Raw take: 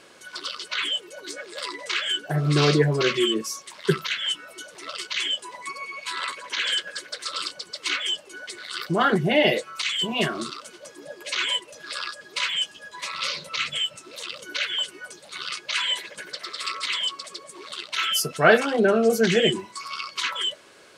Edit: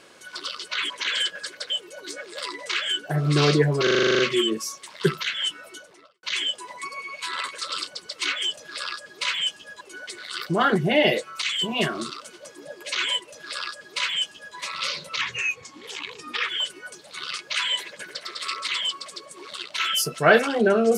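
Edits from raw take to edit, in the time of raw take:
0:03.03: stutter 0.04 s, 10 plays
0:04.48–0:05.07: fade out and dull
0:06.42–0:07.22: move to 0:00.90
0:11.72–0:12.96: duplicate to 0:08.21
0:13.61–0:14.67: play speed 83%

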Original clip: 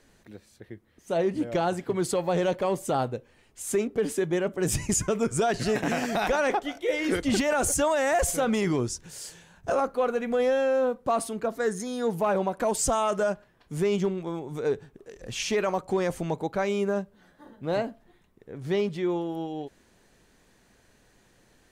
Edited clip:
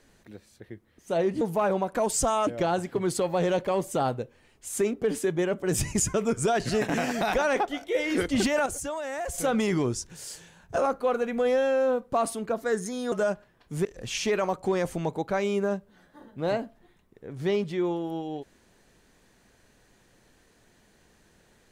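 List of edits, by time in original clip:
0:07.60–0:08.32: clip gain −9 dB
0:12.06–0:13.12: move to 0:01.41
0:13.85–0:15.10: remove

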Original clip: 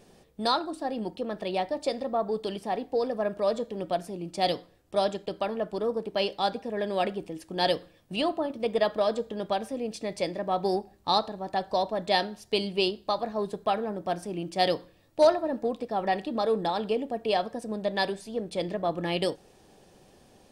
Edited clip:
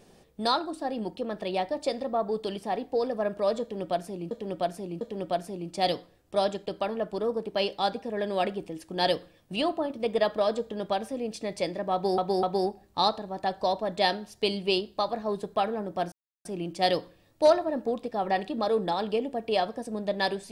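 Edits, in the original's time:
0:03.61–0:04.31: repeat, 3 plays
0:10.53–0:10.78: repeat, 3 plays
0:14.22: splice in silence 0.33 s

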